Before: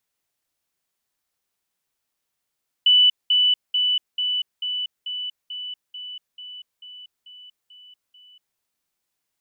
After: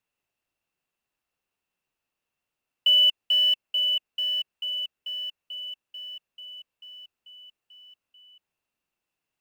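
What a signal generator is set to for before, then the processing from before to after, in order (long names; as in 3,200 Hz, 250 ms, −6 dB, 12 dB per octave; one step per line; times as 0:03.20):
level staircase 2,980 Hz −11.5 dBFS, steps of −3 dB, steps 13, 0.24 s 0.20 s
floating-point word with a short mantissa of 2 bits
high-shelf EQ 2,700 Hz −11 dB
hollow resonant body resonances 2,700 Hz, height 14 dB, ringing for 20 ms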